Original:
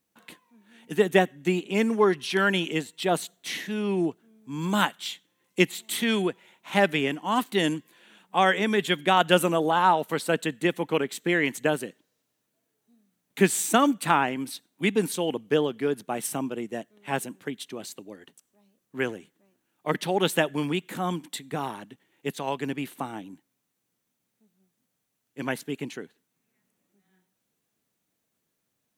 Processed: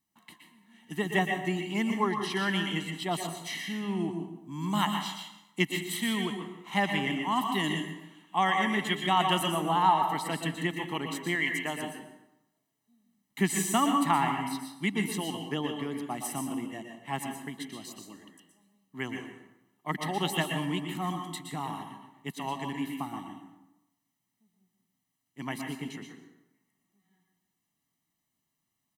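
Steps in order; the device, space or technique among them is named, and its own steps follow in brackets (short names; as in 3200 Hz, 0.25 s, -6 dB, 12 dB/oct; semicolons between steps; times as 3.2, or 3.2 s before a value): microphone above a desk (comb 1 ms, depth 76%; reverb RT60 0.30 s, pre-delay 0.114 s, DRR 5 dB); 11.35–11.8 low shelf 320 Hz -9 dB; plate-style reverb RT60 0.94 s, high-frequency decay 0.6×, pre-delay 0.105 s, DRR 10.5 dB; gain -7 dB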